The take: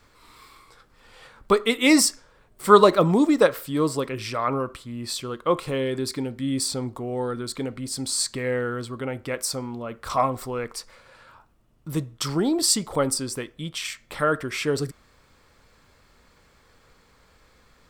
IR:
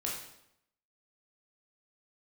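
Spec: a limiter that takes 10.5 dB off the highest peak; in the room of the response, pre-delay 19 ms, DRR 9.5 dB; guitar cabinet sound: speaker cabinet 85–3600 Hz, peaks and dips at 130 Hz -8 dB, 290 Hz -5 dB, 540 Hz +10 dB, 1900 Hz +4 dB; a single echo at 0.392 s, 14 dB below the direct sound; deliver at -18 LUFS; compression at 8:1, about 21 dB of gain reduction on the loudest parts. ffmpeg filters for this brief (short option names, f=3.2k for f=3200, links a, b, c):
-filter_complex "[0:a]acompressor=threshold=-31dB:ratio=8,alimiter=level_in=4dB:limit=-24dB:level=0:latency=1,volume=-4dB,aecho=1:1:392:0.2,asplit=2[a][b];[1:a]atrim=start_sample=2205,adelay=19[c];[b][c]afir=irnorm=-1:irlink=0,volume=-12.5dB[d];[a][d]amix=inputs=2:normalize=0,highpass=85,equalizer=f=130:t=q:w=4:g=-8,equalizer=f=290:t=q:w=4:g=-5,equalizer=f=540:t=q:w=4:g=10,equalizer=f=1.9k:t=q:w=4:g=4,lowpass=f=3.6k:w=0.5412,lowpass=f=3.6k:w=1.3066,volume=18dB"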